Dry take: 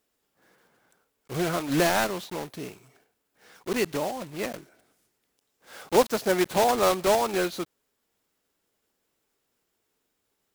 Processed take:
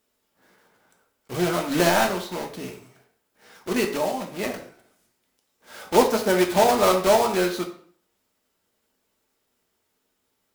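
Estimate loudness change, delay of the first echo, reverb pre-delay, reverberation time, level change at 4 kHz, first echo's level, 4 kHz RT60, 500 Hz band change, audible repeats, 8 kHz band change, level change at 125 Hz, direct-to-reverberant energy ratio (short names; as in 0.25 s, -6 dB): +4.0 dB, none, 3 ms, 0.55 s, +3.5 dB, none, 0.45 s, +4.0 dB, none, +3.0 dB, +3.0 dB, 2.0 dB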